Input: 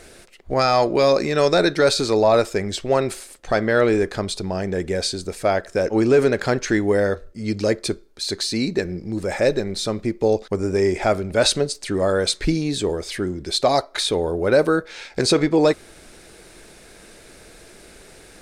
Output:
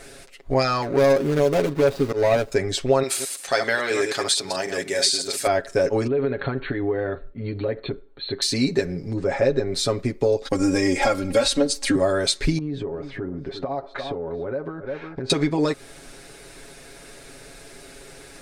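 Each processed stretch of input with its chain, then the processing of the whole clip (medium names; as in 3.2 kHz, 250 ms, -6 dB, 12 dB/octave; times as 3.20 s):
0.82–2.52 s: median filter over 41 samples + slow attack 137 ms
3.03–5.47 s: chunks repeated in reverse 109 ms, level -6 dB + high-pass 690 Hz 6 dB/octave + treble shelf 2.5 kHz +8.5 dB
6.07–8.42 s: treble shelf 2.5 kHz -9.5 dB + compression, threshold -23 dBFS + brick-wall FIR low-pass 4.4 kHz
9.13–9.72 s: low-pass 7.5 kHz 24 dB/octave + treble shelf 2.8 kHz -10 dB
10.45–11.96 s: comb 3.7 ms, depth 96% + three bands compressed up and down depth 40%
12.58–15.30 s: low-pass 1.4 kHz + delay 351 ms -17 dB + compression 12:1, threshold -27 dBFS
whole clip: compression, threshold -18 dBFS; comb 7.3 ms, depth 77%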